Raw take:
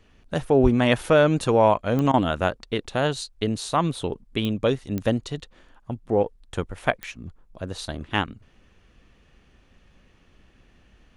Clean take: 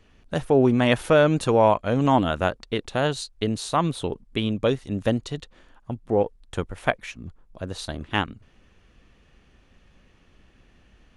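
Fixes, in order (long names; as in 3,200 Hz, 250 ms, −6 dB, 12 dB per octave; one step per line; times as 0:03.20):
click removal
0:00.62–0:00.74: high-pass filter 140 Hz 24 dB per octave
repair the gap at 0:02.12, 16 ms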